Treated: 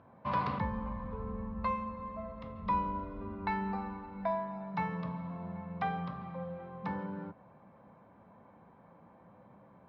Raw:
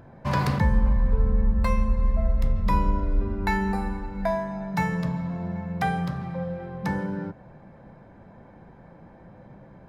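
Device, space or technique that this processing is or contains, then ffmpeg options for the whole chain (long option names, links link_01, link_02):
guitar cabinet: -filter_complex "[0:a]asettb=1/sr,asplit=3[link_01][link_02][link_03];[link_01]atrim=end=1.714[link_04];[link_02]atrim=start=1.71:end=2.62,asetpts=PTS-STARTPTS,afade=type=in:duration=0.004:curve=qsin,afade=type=out:start_time=0.906:duration=0.004:curve=qsin,highpass=frequency=120:poles=1[link_05];[link_03]atrim=start=2.616[link_06];[link_04][link_05]acrossfade=duration=0.004:curve1=hsin:curve2=qsin[link_07];[link_07][link_06]acrossfade=duration=0.004:curve1=qsin:curve2=hsin,highpass=110,equalizer=frequency=140:width_type=q:width=4:gain=-7,equalizer=frequency=350:width_type=q:width=4:gain=-5,equalizer=frequency=1100:width_type=q:width=4:gain=9,equalizer=frequency=1700:width_type=q:width=4:gain=-5,lowpass=frequency=3700:width=0.5412,lowpass=frequency=3700:width=1.3066,volume=-8.5dB"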